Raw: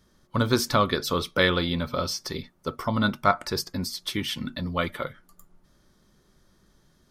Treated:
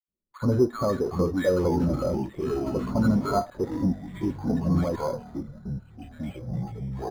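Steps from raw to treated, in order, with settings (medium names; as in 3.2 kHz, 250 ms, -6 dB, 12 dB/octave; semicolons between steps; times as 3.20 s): block-companded coder 3-bit; spectral gate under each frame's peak -25 dB strong; tone controls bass -7 dB, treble +3 dB; in parallel at -11 dB: fuzz box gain 46 dB, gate -50 dBFS; on the sum: ever faster or slower copies 577 ms, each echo -5 st, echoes 3, each echo -6 dB; tape spacing loss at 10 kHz 44 dB; bands offset in time highs, lows 80 ms, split 1.2 kHz; careless resampling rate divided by 8×, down filtered, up hold; spectral contrast expander 1.5:1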